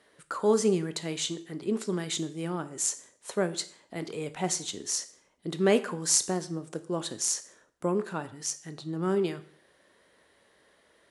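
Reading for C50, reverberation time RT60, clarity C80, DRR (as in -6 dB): 16.5 dB, 0.50 s, 19.5 dB, 11.0 dB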